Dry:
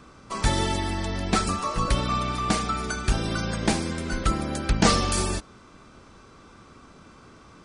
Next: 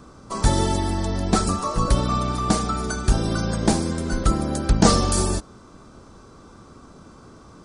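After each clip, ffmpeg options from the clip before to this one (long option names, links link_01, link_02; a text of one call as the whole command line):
ffmpeg -i in.wav -af "equalizer=frequency=2400:width=1:gain=-11,volume=5dB" out.wav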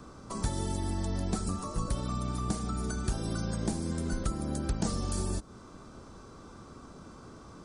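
ffmpeg -i in.wav -filter_complex "[0:a]acrossover=split=300|7600[link_01][link_02][link_03];[link_01]acompressor=threshold=-27dB:ratio=4[link_04];[link_02]acompressor=threshold=-38dB:ratio=4[link_05];[link_03]acompressor=threshold=-42dB:ratio=4[link_06];[link_04][link_05][link_06]amix=inputs=3:normalize=0,volume=-3dB" out.wav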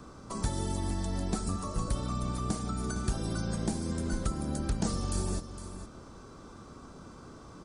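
ffmpeg -i in.wav -af "aecho=1:1:460:0.266" out.wav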